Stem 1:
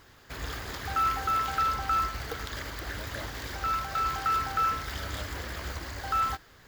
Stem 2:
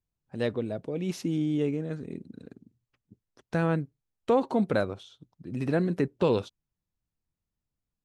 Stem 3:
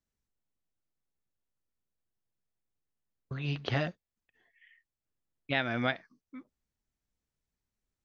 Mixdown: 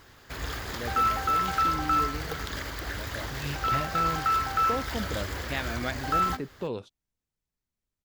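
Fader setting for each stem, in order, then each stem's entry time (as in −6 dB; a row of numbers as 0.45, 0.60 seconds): +2.0, −9.0, −2.5 decibels; 0.00, 0.40, 0.00 seconds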